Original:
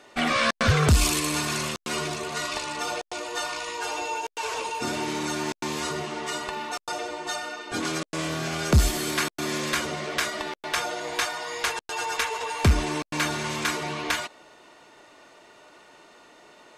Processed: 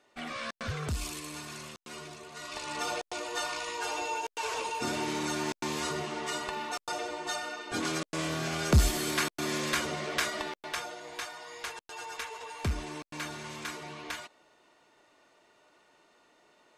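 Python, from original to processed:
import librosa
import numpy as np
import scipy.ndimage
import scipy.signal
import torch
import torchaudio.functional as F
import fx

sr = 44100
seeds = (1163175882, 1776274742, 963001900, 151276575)

y = fx.gain(x, sr, db=fx.line((2.34, -15.0), (2.76, -3.5), (10.41, -3.5), (10.99, -12.0)))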